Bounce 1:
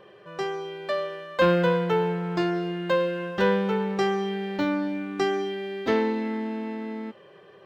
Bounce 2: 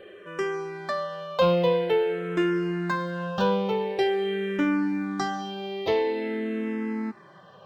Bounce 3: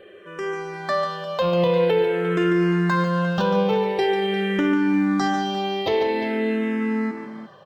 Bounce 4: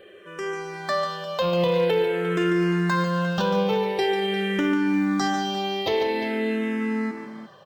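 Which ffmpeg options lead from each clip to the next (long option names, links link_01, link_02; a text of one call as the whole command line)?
ffmpeg -i in.wav -filter_complex "[0:a]asplit=2[link_01][link_02];[link_02]acompressor=threshold=-32dB:ratio=6,volume=0.5dB[link_03];[link_01][link_03]amix=inputs=2:normalize=0,asplit=2[link_04][link_05];[link_05]afreqshift=-0.47[link_06];[link_04][link_06]amix=inputs=2:normalize=1" out.wav
ffmpeg -i in.wav -filter_complex "[0:a]alimiter=limit=-21dB:level=0:latency=1:release=35,dynaudnorm=framelen=190:gausssize=7:maxgain=7.5dB,asplit=2[link_01][link_02];[link_02]aecho=0:1:144|351:0.398|0.211[link_03];[link_01][link_03]amix=inputs=2:normalize=0" out.wav
ffmpeg -i in.wav -af "highshelf=frequency=3800:gain=8,asoftclip=type=hard:threshold=-12dB,volume=-2.5dB" out.wav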